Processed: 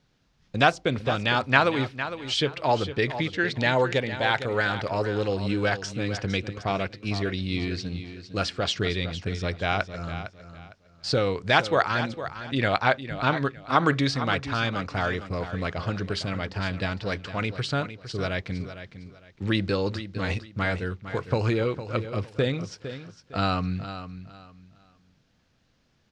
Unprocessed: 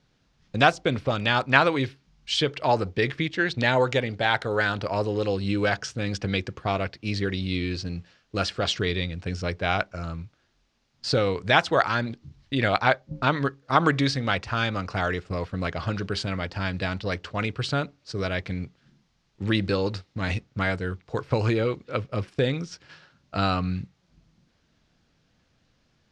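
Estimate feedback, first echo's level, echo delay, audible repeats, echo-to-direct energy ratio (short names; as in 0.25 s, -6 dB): 26%, -11.5 dB, 0.457 s, 3, -11.0 dB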